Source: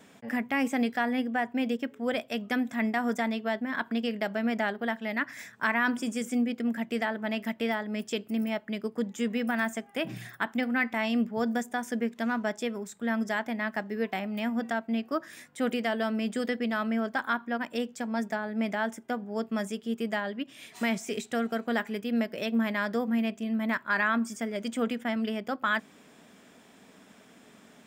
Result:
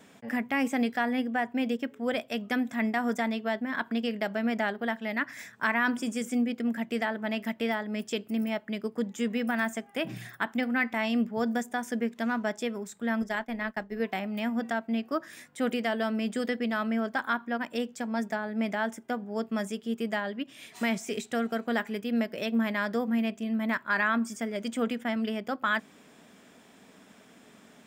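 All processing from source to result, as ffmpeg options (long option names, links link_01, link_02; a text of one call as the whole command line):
ffmpeg -i in.wav -filter_complex "[0:a]asettb=1/sr,asplit=3[link_01][link_02][link_03];[link_01]atrim=end=13.224[link_04];[link_02]atrim=start=13.22:end=14,asetpts=PTS-STARTPTS,afade=type=in:duration=0.004:curve=qsin,afade=type=out:start_time=0.776:duration=0.004:curve=qsin,tremolo=f=240:d=0.333,agate=range=-33dB:threshold=-36dB:ratio=3:release=100:detection=peak[link_05];[link_03]atrim=start=13.996[link_06];[link_04][link_05]acrossfade=duration=0.004:curve1=hsin:curve2=qsin[link_07];[link_07][link_06]acrossfade=duration=0.004:curve1=qsin:curve2=hsin" out.wav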